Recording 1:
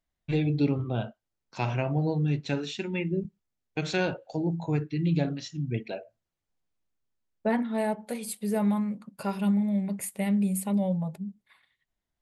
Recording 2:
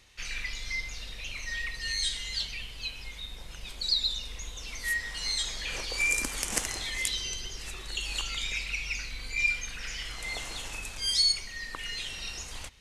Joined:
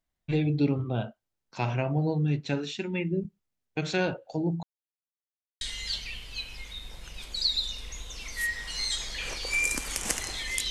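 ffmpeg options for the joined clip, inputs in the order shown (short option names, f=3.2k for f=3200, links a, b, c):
-filter_complex "[0:a]apad=whole_dur=10.7,atrim=end=10.7,asplit=2[a][b];[a]atrim=end=4.63,asetpts=PTS-STARTPTS,afade=t=out:st=4.626:d=0.004:c=hsin[c];[b]atrim=start=4.63:end=5.61,asetpts=PTS-STARTPTS,volume=0[d];[1:a]atrim=start=2.08:end=7.17,asetpts=PTS-STARTPTS,afade=t=in:d=0.004:c=hsin[e];[c][d][e]concat=n=3:v=0:a=1"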